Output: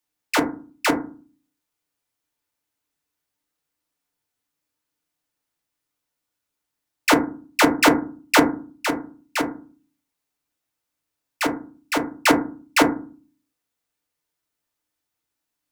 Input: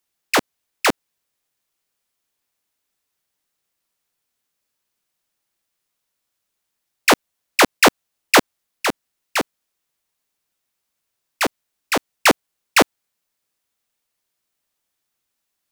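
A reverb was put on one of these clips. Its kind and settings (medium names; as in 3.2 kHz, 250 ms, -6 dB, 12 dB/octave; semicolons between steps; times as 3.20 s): FDN reverb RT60 0.38 s, low-frequency decay 1.6×, high-frequency decay 0.3×, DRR 1 dB; trim -5.5 dB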